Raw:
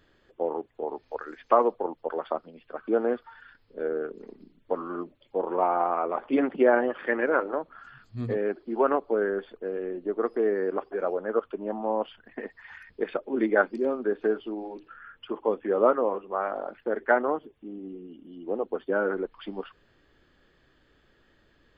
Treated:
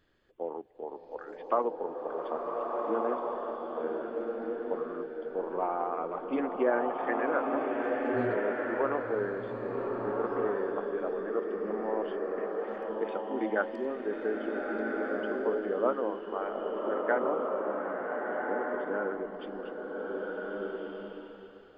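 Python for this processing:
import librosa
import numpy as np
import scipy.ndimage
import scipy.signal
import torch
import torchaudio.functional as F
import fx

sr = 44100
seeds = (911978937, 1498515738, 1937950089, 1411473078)

y = fx.rev_bloom(x, sr, seeds[0], attack_ms=1570, drr_db=-1.5)
y = y * 10.0 ** (-7.5 / 20.0)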